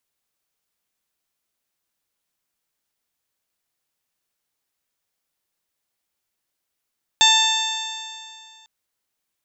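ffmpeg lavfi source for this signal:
ffmpeg -f lavfi -i "aevalsrc='0.126*pow(10,-3*t/2.28)*sin(2*PI*882.75*t)+0.075*pow(10,-3*t/2.28)*sin(2*PI*1769.99*t)+0.075*pow(10,-3*t/2.28)*sin(2*PI*2666.17*t)+0.251*pow(10,-3*t/2.28)*sin(2*PI*3575.66*t)+0.0501*pow(10,-3*t/2.28)*sin(2*PI*4502.74*t)+0.0335*pow(10,-3*t/2.28)*sin(2*PI*5451.53*t)+0.0794*pow(10,-3*t/2.28)*sin(2*PI*6426*t)+0.0891*pow(10,-3*t/2.28)*sin(2*PI*7429.94*t)':duration=1.45:sample_rate=44100" out.wav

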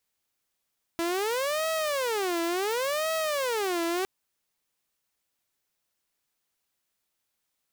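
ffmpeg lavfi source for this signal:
ffmpeg -f lavfi -i "aevalsrc='0.0668*(2*mod((489*t-154/(2*PI*0.7)*sin(2*PI*0.7*t)),1)-1)':duration=3.06:sample_rate=44100" out.wav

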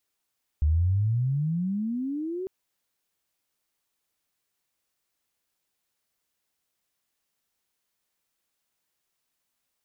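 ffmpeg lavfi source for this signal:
ffmpeg -f lavfi -i "aevalsrc='pow(10,(-18.5-11*t/1.85)/20)*sin(2*PI*72.4*1.85/(29*log(2)/12)*(exp(29*log(2)/12*t/1.85)-1))':duration=1.85:sample_rate=44100" out.wav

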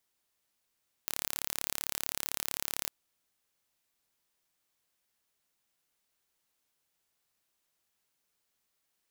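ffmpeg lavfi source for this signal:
ffmpeg -f lavfi -i "aevalsrc='0.501*eq(mod(n,1239),0)':duration=1.82:sample_rate=44100" out.wav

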